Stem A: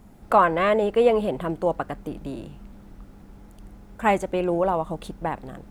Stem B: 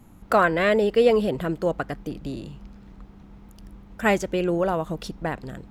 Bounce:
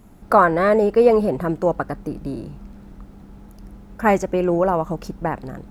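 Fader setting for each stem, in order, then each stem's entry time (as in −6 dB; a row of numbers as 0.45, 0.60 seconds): 0.0, −2.0 decibels; 0.00, 0.00 seconds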